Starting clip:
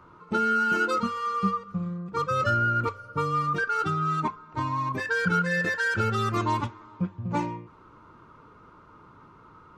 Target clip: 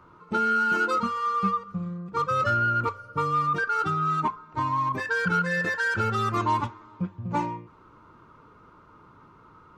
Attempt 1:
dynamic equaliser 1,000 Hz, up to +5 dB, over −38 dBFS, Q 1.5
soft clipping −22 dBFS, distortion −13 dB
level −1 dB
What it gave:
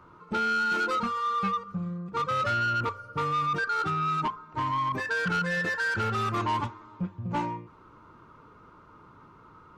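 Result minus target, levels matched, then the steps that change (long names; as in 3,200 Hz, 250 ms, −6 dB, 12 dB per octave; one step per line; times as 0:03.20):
soft clipping: distortion +14 dB
change: soft clipping −12 dBFS, distortion −27 dB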